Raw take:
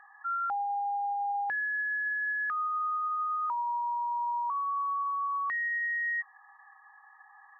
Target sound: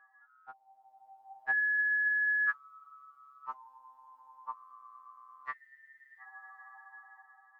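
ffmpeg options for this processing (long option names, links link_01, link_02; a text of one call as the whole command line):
ffmpeg -i in.wav -af "dynaudnorm=framelen=270:gausssize=7:maxgain=13dB,afftfilt=real='re*2.45*eq(mod(b,6),0)':imag='im*2.45*eq(mod(b,6),0)':win_size=2048:overlap=0.75,volume=-6.5dB" out.wav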